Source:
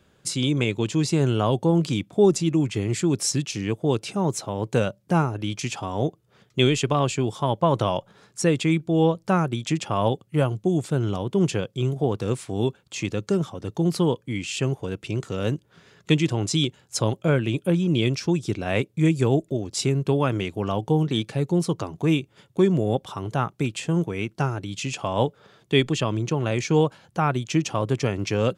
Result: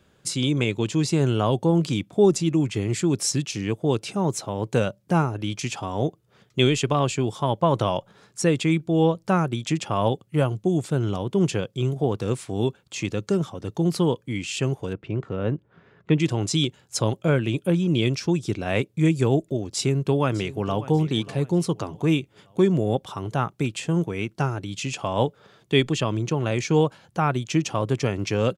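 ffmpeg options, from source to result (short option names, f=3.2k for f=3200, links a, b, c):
-filter_complex "[0:a]asettb=1/sr,asplit=3[a][b][c];[a]atrim=end=14.934[d];[b]atrim=start=14.93:end=16.2,asetpts=PTS-STARTPTS,afade=t=in:d=0.004:c=qsin,afade=t=out:st=1.266:d=0.004:c=qsin,lowpass=1.8k[e];[c]atrim=start=16.196[f];[d][e]acrossfade=d=0.004:c1=hsin:c2=qsin[g];[g][f]acrossfade=d=0.004:c1=qsin:c2=hsin,asplit=2[h][i];[i]afade=t=in:st=19.75:d=0.01,afade=t=out:st=20.86:d=0.01,aecho=0:1:590|1180|1770:0.141254|0.0565015|0.0226006[j];[h][j]amix=inputs=2:normalize=0"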